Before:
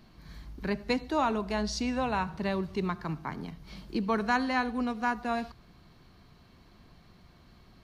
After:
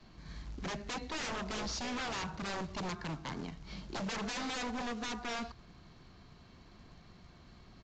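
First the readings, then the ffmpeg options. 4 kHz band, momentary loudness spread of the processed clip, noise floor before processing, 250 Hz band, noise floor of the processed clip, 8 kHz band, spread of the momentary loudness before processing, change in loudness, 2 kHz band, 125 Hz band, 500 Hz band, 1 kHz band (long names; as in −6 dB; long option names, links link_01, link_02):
0.0 dB, 21 LU, −58 dBFS, −9.5 dB, −58 dBFS, +2.0 dB, 13 LU, −8.0 dB, −6.5 dB, −5.5 dB, −10.0 dB, −9.5 dB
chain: -af "adynamicequalizer=threshold=0.00501:dfrequency=170:dqfactor=1.4:tfrequency=170:tqfactor=1.4:attack=5:release=100:ratio=0.375:range=2:mode=cutabove:tftype=bell,acrusher=bits=4:mode=log:mix=0:aa=0.000001,aeval=exprs='0.0224*(abs(mod(val(0)/0.0224+3,4)-2)-1)':channel_layout=same,aresample=16000,aresample=44100"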